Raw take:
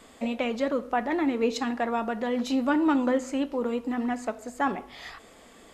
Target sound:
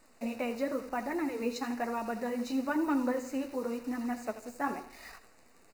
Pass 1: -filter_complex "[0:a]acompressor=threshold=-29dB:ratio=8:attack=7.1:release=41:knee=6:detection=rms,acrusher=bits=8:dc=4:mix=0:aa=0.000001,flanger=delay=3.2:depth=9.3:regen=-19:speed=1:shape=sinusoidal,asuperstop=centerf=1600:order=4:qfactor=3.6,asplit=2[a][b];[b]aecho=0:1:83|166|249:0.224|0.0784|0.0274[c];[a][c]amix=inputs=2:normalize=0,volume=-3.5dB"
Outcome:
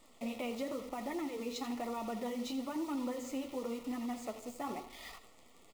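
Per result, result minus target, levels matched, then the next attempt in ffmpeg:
compressor: peak gain reduction +9.5 dB; 2000 Hz band -3.5 dB
-filter_complex "[0:a]acrusher=bits=8:dc=4:mix=0:aa=0.000001,flanger=delay=3.2:depth=9.3:regen=-19:speed=1:shape=sinusoidal,asuperstop=centerf=1600:order=4:qfactor=3.6,asplit=2[a][b];[b]aecho=0:1:83|166|249:0.224|0.0784|0.0274[c];[a][c]amix=inputs=2:normalize=0,volume=-3.5dB"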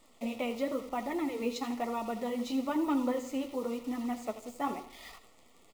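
2000 Hz band -4.0 dB
-filter_complex "[0:a]acrusher=bits=8:dc=4:mix=0:aa=0.000001,flanger=delay=3.2:depth=9.3:regen=-19:speed=1:shape=sinusoidal,asuperstop=centerf=3300:order=4:qfactor=3.6,asplit=2[a][b];[b]aecho=0:1:83|166|249:0.224|0.0784|0.0274[c];[a][c]amix=inputs=2:normalize=0,volume=-3.5dB"

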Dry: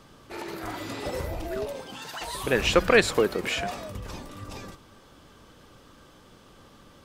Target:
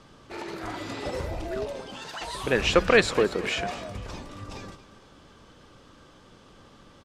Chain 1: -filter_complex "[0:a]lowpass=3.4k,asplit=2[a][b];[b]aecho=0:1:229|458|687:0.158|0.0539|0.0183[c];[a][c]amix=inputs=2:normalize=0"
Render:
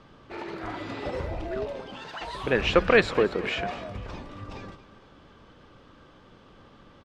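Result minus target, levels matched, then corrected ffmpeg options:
8000 Hz band -11.0 dB
-filter_complex "[0:a]lowpass=7.8k,asplit=2[a][b];[b]aecho=0:1:229|458|687:0.158|0.0539|0.0183[c];[a][c]amix=inputs=2:normalize=0"

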